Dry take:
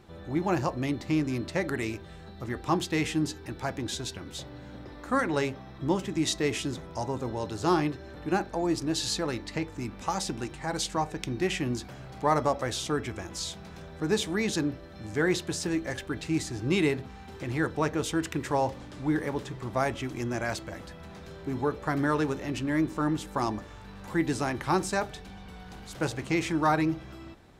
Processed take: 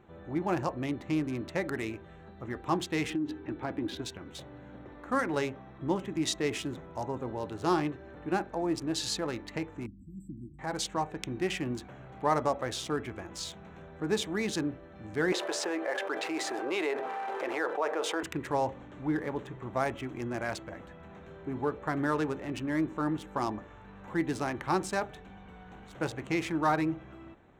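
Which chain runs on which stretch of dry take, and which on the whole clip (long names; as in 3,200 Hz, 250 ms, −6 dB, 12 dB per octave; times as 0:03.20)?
0:03.10–0:04.02: low-pass filter 4,600 Hz 24 dB per octave + parametric band 300 Hz +10 dB 0.49 octaves + downward compressor 16 to 1, threshold −24 dBFS
0:09.86–0:10.59: linear-phase brick-wall band-stop 360–7,600 Hz + phaser with its sweep stopped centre 2,300 Hz, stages 8
0:15.32–0:18.23: high-pass filter 540 Hz 24 dB per octave + spectral tilt −4 dB per octave + envelope flattener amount 70%
whole clip: adaptive Wiener filter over 9 samples; low-shelf EQ 130 Hz −6.5 dB; level −2 dB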